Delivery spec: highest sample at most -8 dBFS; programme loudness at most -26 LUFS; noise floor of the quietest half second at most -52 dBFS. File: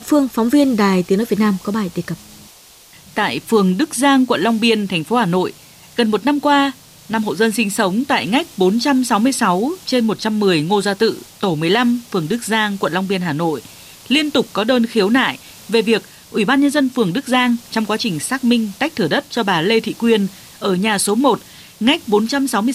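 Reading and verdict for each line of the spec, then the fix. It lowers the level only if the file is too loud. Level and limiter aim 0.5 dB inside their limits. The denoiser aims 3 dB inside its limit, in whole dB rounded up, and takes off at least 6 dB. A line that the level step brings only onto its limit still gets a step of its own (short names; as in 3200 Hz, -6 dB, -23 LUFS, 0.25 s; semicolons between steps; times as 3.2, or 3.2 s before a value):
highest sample -3.5 dBFS: fail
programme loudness -17.0 LUFS: fail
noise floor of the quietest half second -44 dBFS: fail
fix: gain -9.5 dB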